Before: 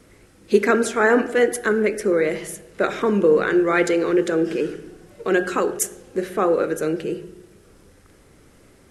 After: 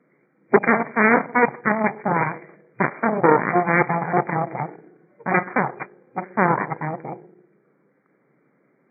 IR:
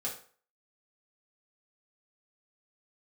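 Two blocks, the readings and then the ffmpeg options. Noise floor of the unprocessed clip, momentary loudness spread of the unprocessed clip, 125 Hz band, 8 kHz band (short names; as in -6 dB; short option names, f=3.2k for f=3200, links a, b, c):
-53 dBFS, 11 LU, +6.0 dB, under -40 dB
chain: -af "aeval=exprs='0.708*(cos(1*acos(clip(val(0)/0.708,-1,1)))-cos(1*PI/2))+0.224*(cos(6*acos(clip(val(0)/0.708,-1,1)))-cos(6*PI/2))+0.141*(cos(7*acos(clip(val(0)/0.708,-1,1)))-cos(7*PI/2))':c=same,afftfilt=real='re*between(b*sr/4096,120,2400)':imag='im*between(b*sr/4096,120,2400)':win_size=4096:overlap=0.75,volume=-1dB"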